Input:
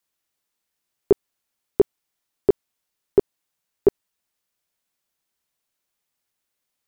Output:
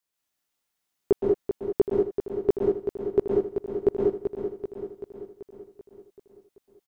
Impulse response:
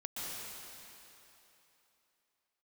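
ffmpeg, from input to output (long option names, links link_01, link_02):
-filter_complex "[0:a]aecho=1:1:385|770|1155|1540|1925|2310|2695|3080:0.422|0.249|0.147|0.0866|0.0511|0.0301|0.0178|0.0105[link_01];[1:a]atrim=start_sample=2205,afade=type=out:start_time=0.26:duration=0.01,atrim=end_sample=11907[link_02];[link_01][link_02]afir=irnorm=-1:irlink=0"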